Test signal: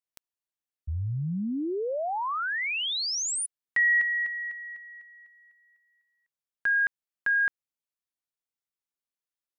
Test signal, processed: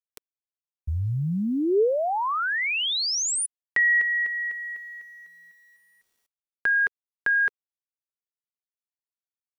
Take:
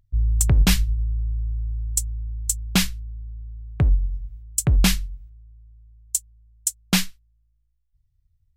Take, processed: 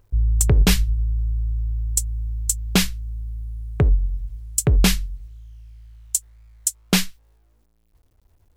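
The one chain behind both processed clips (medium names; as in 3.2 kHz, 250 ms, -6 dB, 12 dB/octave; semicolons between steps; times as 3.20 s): peaking EQ 430 Hz +9.5 dB 0.54 oct; in parallel at -0.5 dB: compression 6:1, threshold -33 dBFS; on the sum: bit crusher 11-bit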